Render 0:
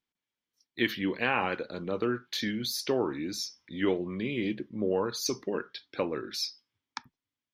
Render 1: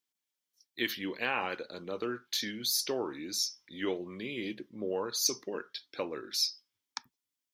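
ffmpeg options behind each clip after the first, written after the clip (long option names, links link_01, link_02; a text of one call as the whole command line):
ffmpeg -i in.wav -af "bass=frequency=250:gain=-7,treble=frequency=4000:gain=11,volume=-4.5dB" out.wav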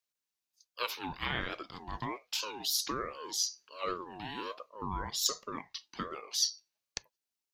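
ffmpeg -i in.wav -af "equalizer=frequency=5200:width_type=o:width=0.34:gain=4,aeval=exprs='val(0)*sin(2*PI*690*n/s+690*0.25/1.3*sin(2*PI*1.3*n/s))':channel_layout=same" out.wav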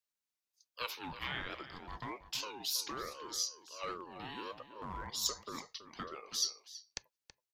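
ffmpeg -i in.wav -filter_complex "[0:a]acrossover=split=890[link_01][link_02];[link_01]aeval=exprs='0.0178*(abs(mod(val(0)/0.0178+3,4)-2)-1)':channel_layout=same[link_03];[link_03][link_02]amix=inputs=2:normalize=0,asplit=2[link_04][link_05];[link_05]adelay=326.5,volume=-12dB,highshelf=frequency=4000:gain=-7.35[link_06];[link_04][link_06]amix=inputs=2:normalize=0,volume=-4dB" out.wav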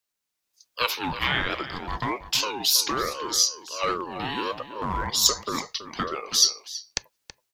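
ffmpeg -i in.wav -af "dynaudnorm=framelen=340:gausssize=3:maxgain=7.5dB,volume=7.5dB" out.wav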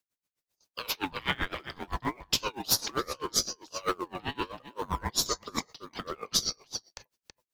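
ffmpeg -i in.wav -filter_complex "[0:a]asplit=2[link_01][link_02];[link_02]acrusher=samples=34:mix=1:aa=0.000001:lfo=1:lforange=34:lforate=0.98,volume=-12dB[link_03];[link_01][link_03]amix=inputs=2:normalize=0,aeval=exprs='val(0)*pow(10,-26*(0.5-0.5*cos(2*PI*7.7*n/s))/20)':channel_layout=same" out.wav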